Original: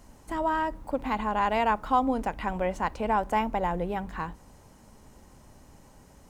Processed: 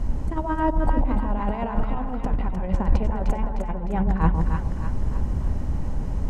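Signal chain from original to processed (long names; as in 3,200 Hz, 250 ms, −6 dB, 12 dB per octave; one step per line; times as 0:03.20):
RIAA equalisation playback
compressor whose output falls as the input rises −28 dBFS, ratio −0.5
on a send: echo with a time of its own for lows and highs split 950 Hz, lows 142 ms, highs 305 ms, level −4.5 dB
on the sum: level +6 dB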